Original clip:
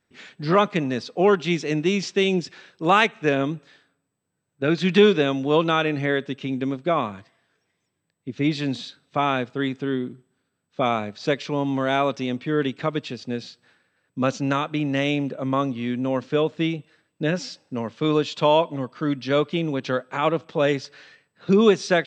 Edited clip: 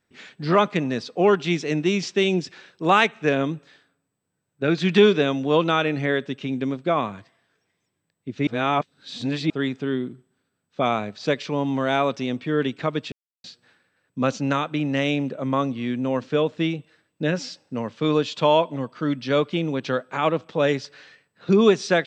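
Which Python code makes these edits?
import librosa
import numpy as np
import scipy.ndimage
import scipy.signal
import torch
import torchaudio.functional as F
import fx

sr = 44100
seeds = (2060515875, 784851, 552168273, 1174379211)

y = fx.edit(x, sr, fx.reverse_span(start_s=8.47, length_s=1.03),
    fx.silence(start_s=13.12, length_s=0.32), tone=tone)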